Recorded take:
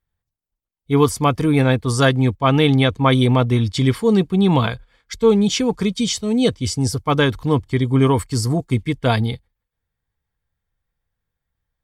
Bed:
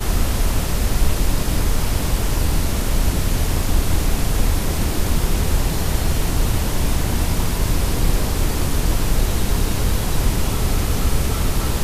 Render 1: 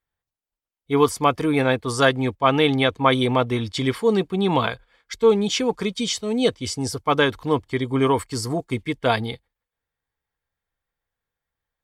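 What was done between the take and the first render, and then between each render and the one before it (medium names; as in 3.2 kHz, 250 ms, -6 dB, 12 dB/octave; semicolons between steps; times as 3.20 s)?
tone controls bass -11 dB, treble -4 dB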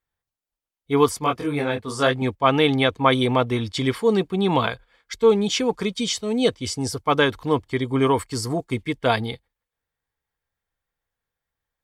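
1.19–2.22 s: detune thickener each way 30 cents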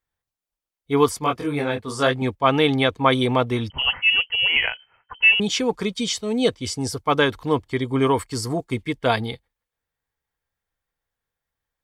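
3.70–5.40 s: frequency inversion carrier 3.1 kHz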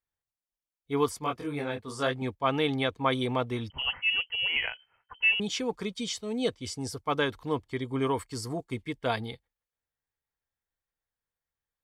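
trim -9 dB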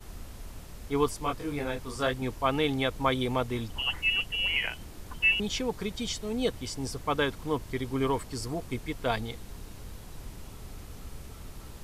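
add bed -24.5 dB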